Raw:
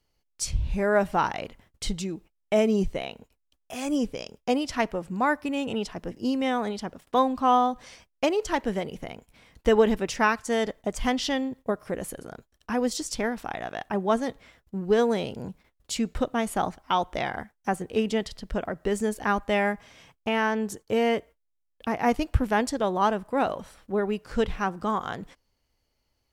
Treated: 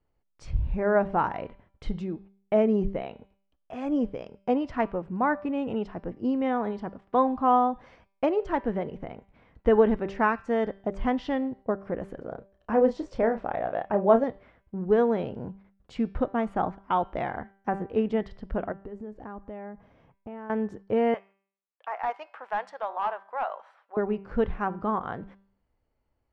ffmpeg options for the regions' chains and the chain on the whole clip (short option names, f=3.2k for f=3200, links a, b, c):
-filter_complex "[0:a]asettb=1/sr,asplit=3[a][b][c];[a]atrim=end=12.214[d];[b]atrim=start=12.21:end=14.24,asetpts=PTS-STARTPTS,afade=t=in:d=0.004:c=qsin,afade=t=out:st=2.026:d=0.004:c=qsin,lowpass=8k,equalizer=f=560:w=2.6:g=10.5,asplit=2[e][f];[f]adelay=31,volume=-9dB[g];[e][g]amix=inputs=2:normalize=0,atrim=end_sample=89523[h];[c]atrim=start=14.236[i];[d][h]acrossfade=d=0.004:c1=hsin:c2=qsin[j];[j][i]acrossfade=d=0.004:c1=qsin:c2=hsin,asettb=1/sr,asplit=3[k][l][m];[k]atrim=end=18.724[n];[l]atrim=start=18.72:end=20.5,asetpts=PTS-STARTPTS,afade=t=in:d=0.004:c=qsin,afade=t=out:st=1.776:d=0.004:c=qsin,lowpass=6.9k,equalizer=f=2.6k:t=o:w=2.9:g=-9,acompressor=threshold=-39dB:ratio=3:attack=3.2:release=140:knee=1:detection=peak[o];[m]atrim=start=20.496[p];[n][o]acrossfade=d=0.004:c1=hsin:c2=qsin[q];[q][p]acrossfade=d=0.004:c1=qsin:c2=hsin,asettb=1/sr,asplit=3[r][s][t];[r]atrim=end=21.144[u];[s]atrim=start=21.14:end=23.97,asetpts=PTS-STARTPTS,afade=t=in:d=0.004:c=qsin,afade=t=out:st=2.826:d=0.004:c=qsin,highpass=f=710:w=0.5412,highpass=f=710:w=1.3066,asoftclip=type=hard:threshold=-21.5dB[v];[t]atrim=start=23.966[w];[u][v]acrossfade=d=0.004:c1=hsin:c2=qsin[x];[x][w]acrossfade=d=0.004:c1=qsin:c2=hsin,lowpass=1.5k,bandreject=f=195.9:t=h:w=4,bandreject=f=391.8:t=h:w=4,bandreject=f=587.7:t=h:w=4,bandreject=f=783.6:t=h:w=4,bandreject=f=979.5:t=h:w=4,bandreject=f=1.1754k:t=h:w=4,bandreject=f=1.3713k:t=h:w=4,bandreject=f=1.5672k:t=h:w=4,bandreject=f=1.7631k:t=h:w=4,bandreject=f=1.959k:t=h:w=4,bandreject=f=2.1549k:t=h:w=4,bandreject=f=2.3508k:t=h:w=4,bandreject=f=2.5467k:t=h:w=4,bandreject=f=2.7426k:t=h:w=4,bandreject=f=2.9385k:t=h:w=4,bandreject=f=3.1344k:t=h:w=4,bandreject=f=3.3303k:t=h:w=4,bandreject=f=3.5262k:t=h:w=4,bandreject=f=3.7221k:t=h:w=4,bandreject=f=3.918k:t=h:w=4,bandreject=f=4.1139k:t=h:w=4,bandreject=f=4.3098k:t=h:w=4,bandreject=f=4.5057k:t=h:w=4,bandreject=f=4.7016k:t=h:w=4,bandreject=f=4.8975k:t=h:w=4,bandreject=f=5.0934k:t=h:w=4,bandreject=f=5.2893k:t=h:w=4,bandreject=f=5.4852k:t=h:w=4"